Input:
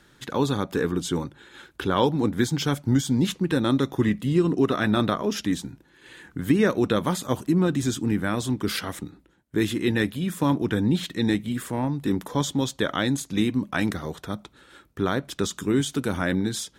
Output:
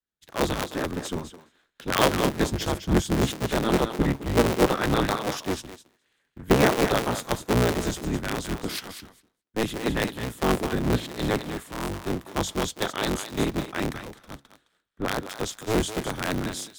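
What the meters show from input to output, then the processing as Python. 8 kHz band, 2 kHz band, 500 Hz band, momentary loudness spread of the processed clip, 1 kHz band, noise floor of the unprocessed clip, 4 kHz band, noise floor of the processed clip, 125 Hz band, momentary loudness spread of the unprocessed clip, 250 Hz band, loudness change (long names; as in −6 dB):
+0.5 dB, +0.5 dB, +0.5 dB, 12 LU, +2.0 dB, −59 dBFS, +0.5 dB, −73 dBFS, −2.5 dB, 9 LU, −4.5 dB, −1.5 dB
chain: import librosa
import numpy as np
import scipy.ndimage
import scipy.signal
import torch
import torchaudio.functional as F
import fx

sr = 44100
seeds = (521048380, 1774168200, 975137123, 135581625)

p1 = fx.cycle_switch(x, sr, every=3, mode='inverted')
p2 = p1 + fx.echo_thinned(p1, sr, ms=213, feedback_pct=15, hz=420.0, wet_db=-6.0, dry=0)
p3 = fx.band_widen(p2, sr, depth_pct=100)
y = p3 * 10.0 ** (-2.5 / 20.0)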